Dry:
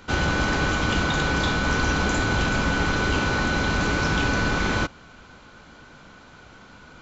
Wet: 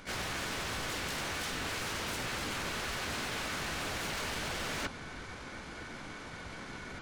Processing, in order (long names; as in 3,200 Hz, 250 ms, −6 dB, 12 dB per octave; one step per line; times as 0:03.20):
wave folding −24 dBFS
pitch-shifted copies added +3 semitones −6 dB, +7 semitones −2 dB
reversed playback
downward compressor 6 to 1, threshold −35 dBFS, peak gain reduction 11.5 dB
reversed playback